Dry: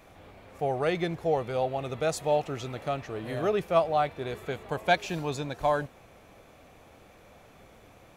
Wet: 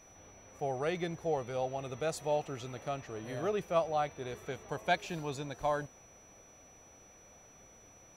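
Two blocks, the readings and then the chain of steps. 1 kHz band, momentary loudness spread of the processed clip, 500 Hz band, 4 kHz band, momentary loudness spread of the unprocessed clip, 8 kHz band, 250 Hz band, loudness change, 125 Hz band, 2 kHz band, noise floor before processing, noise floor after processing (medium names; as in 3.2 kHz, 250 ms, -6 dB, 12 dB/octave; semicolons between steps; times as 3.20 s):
-6.5 dB, 10 LU, -6.5 dB, -6.5 dB, 9 LU, -2.0 dB, -6.5 dB, -6.5 dB, -6.5 dB, -6.5 dB, -55 dBFS, -59 dBFS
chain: whistle 5.9 kHz -52 dBFS; trim -6.5 dB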